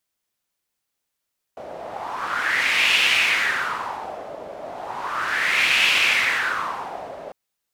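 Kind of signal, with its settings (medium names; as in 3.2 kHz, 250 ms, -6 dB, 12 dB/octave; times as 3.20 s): wind-like swept noise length 5.75 s, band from 600 Hz, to 2.6 kHz, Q 4.1, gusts 2, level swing 18 dB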